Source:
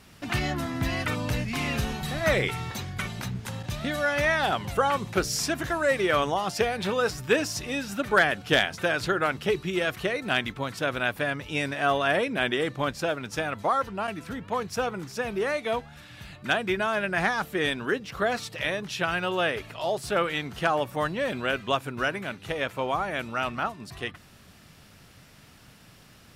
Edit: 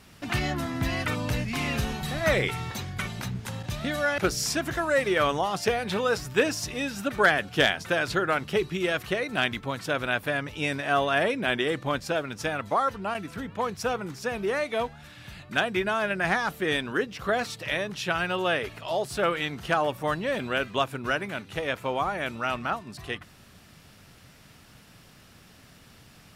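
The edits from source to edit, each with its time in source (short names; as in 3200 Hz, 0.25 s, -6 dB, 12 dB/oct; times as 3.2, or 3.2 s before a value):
4.18–5.11 cut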